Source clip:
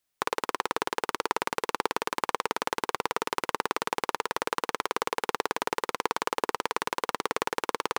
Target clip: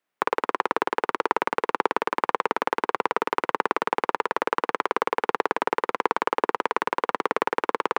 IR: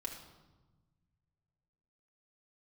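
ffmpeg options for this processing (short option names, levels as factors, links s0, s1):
-filter_complex "[0:a]highpass=f=86:w=0.5412,highpass=f=86:w=1.3066,acrossover=split=170 2600:gain=0.0891 1 0.158[s0][s1][s2];[s0][s1][s2]amix=inputs=3:normalize=0,volume=2"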